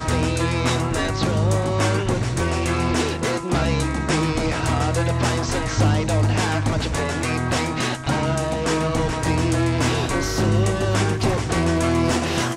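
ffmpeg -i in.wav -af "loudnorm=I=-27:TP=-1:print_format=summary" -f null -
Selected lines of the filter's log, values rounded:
Input Integrated:    -21.2 LUFS
Input True Peak:      -8.2 dBTP
Input LRA:             1.1 LU
Input Threshold:     -31.2 LUFS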